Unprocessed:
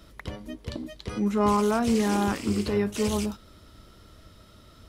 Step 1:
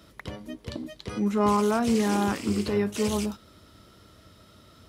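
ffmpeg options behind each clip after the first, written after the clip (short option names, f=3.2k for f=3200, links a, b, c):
-af "highpass=81"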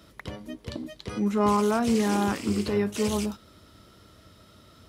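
-af anull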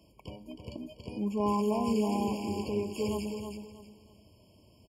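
-af "aecho=1:1:319|638|957:0.473|0.128|0.0345,afftfilt=real='re*eq(mod(floor(b*sr/1024/1100),2),0)':imag='im*eq(mod(floor(b*sr/1024/1100),2),0)':win_size=1024:overlap=0.75,volume=-6.5dB"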